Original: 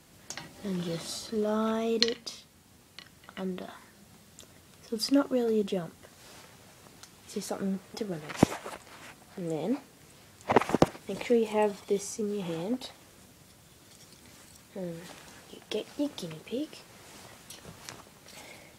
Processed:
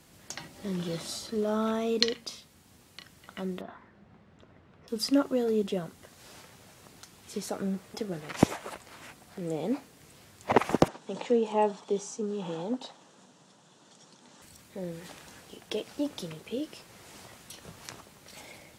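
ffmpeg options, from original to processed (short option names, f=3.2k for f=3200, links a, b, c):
-filter_complex "[0:a]asettb=1/sr,asplit=3[a][b][c];[a]atrim=end=3.614[d];[b]atrim=start=3.61:end=4.88,asetpts=PTS-STARTPTS,afade=t=in:d=0.004:c=qsin,afade=t=out:st=1.266:d=0.004:c=qsin,lowpass=1.8k[e];[c]atrim=start=4.876[f];[d][e]acrossfade=d=0.004:c1=hsin:c2=qsin[g];[g][f]acrossfade=d=0.004:c1=qsin:c2=hsin,asettb=1/sr,asplit=3[h][i][j];[h]atrim=end=10.884[k];[i]atrim=start=10.88:end=14.42,asetpts=PTS-STARTPTS,afade=t=in:d=0.004:c=qsin,afade=t=out:st=3.536:d=0.004:c=qsin,highpass=f=160:w=0.5412,highpass=f=160:w=1.3066,equalizer=f=340:t=q:w=4:g=-3,equalizer=f=900:t=q:w=4:g=5,equalizer=f=2.2k:t=q:w=4:g=-10,equalizer=f=4.8k:t=q:w=4:g=-5,lowpass=f=7.5k:w=0.5412,lowpass=f=7.5k:w=1.3066[l];[j]atrim=start=14.416[m];[k][l]acrossfade=d=0.004:c1=hsin:c2=qsin[n];[n][m]acrossfade=d=0.004:c1=qsin:c2=hsin"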